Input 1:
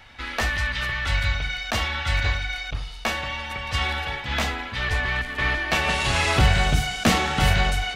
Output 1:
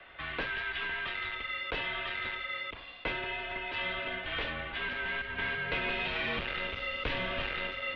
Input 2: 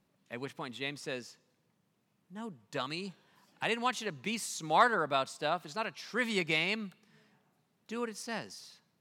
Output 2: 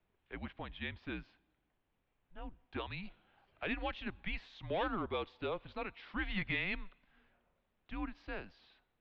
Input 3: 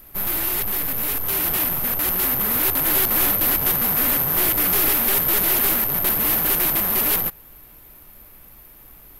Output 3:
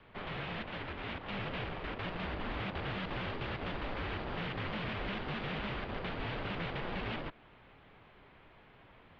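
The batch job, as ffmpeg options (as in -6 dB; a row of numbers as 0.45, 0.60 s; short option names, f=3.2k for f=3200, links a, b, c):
-filter_complex "[0:a]asoftclip=type=tanh:threshold=-19.5dB,acrossover=split=830|1800[a][b][c];[a]acompressor=threshold=-30dB:ratio=4[d];[b]acompressor=threshold=-45dB:ratio=4[e];[c]acompressor=threshold=-26dB:ratio=4[f];[d][e][f]amix=inputs=3:normalize=0,highpass=f=170:t=q:w=0.5412,highpass=f=170:t=q:w=1.307,lowpass=f=3.6k:t=q:w=0.5176,lowpass=f=3.6k:t=q:w=0.7071,lowpass=f=3.6k:t=q:w=1.932,afreqshift=-190,volume=-3dB"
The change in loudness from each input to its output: -10.5, -7.0, -21.5 LU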